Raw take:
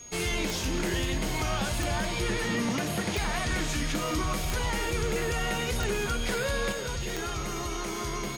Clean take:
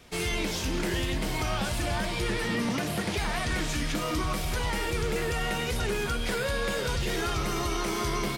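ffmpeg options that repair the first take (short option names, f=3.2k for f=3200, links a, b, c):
-af "adeclick=t=4,bandreject=f=6.6k:w=30,asetnsamples=n=441:p=0,asendcmd='6.72 volume volume 4dB',volume=0dB"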